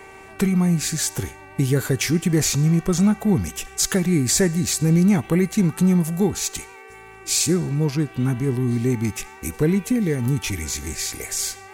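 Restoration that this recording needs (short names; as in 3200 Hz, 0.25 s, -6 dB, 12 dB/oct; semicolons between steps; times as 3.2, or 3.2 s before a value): de-click; de-hum 385.8 Hz, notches 7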